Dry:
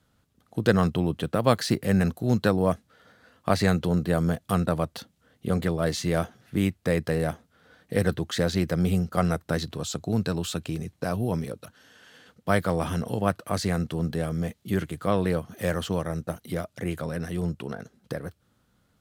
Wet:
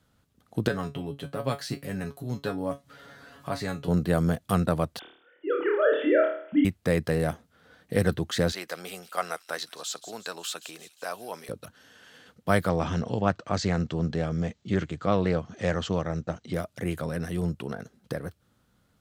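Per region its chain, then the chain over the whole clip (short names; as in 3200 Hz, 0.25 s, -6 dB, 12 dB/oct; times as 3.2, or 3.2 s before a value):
0.68–3.88 upward compressor, threshold -26 dBFS + resonator 140 Hz, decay 0.17 s, mix 90%
4.99–6.65 sine-wave speech + flutter echo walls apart 4.6 m, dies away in 0.56 s
8.52–11.49 HPF 730 Hz + thin delay 0.177 s, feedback 54%, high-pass 3800 Hz, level -11.5 dB
12.69–16.54 steep low-pass 7700 Hz 72 dB/oct + Doppler distortion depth 0.11 ms
whole clip: dry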